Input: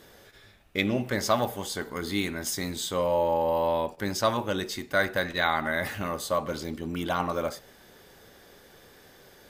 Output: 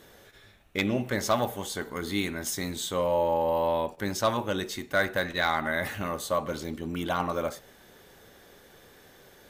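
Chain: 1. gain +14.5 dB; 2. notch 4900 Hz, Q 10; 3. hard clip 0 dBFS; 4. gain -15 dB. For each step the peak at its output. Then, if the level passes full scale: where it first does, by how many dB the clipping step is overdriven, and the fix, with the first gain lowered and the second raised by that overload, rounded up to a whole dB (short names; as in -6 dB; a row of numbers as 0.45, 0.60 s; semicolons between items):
+7.5, +7.5, 0.0, -15.0 dBFS; step 1, 7.5 dB; step 1 +6.5 dB, step 4 -7 dB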